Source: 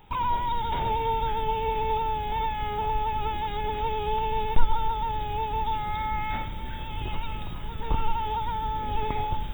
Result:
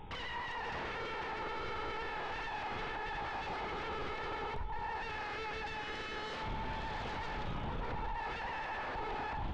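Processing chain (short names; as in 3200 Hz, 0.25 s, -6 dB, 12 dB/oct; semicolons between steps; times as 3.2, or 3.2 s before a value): 5.02–7.64 low shelf 160 Hz -10 dB; compressor 12:1, threshold -30 dBFS, peak gain reduction 20 dB; wavefolder -37.5 dBFS; tape spacing loss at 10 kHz 26 dB; Schroeder reverb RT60 1.2 s, combs from 28 ms, DRR 12.5 dB; gain +5.5 dB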